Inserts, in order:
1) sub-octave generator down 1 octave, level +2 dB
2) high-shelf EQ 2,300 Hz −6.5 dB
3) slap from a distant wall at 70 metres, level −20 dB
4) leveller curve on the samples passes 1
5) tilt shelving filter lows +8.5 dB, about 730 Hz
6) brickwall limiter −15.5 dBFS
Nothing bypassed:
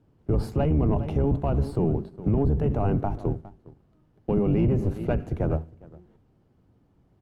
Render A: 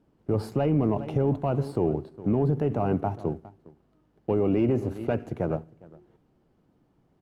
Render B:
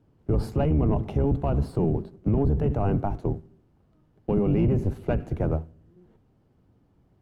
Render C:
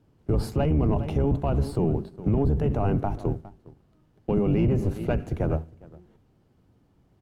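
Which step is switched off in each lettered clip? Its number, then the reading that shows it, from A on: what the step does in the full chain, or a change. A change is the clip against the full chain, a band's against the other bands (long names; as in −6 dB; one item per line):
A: 1, 125 Hz band −4.5 dB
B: 3, change in momentary loudness spread −1 LU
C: 2, 2 kHz band +2.0 dB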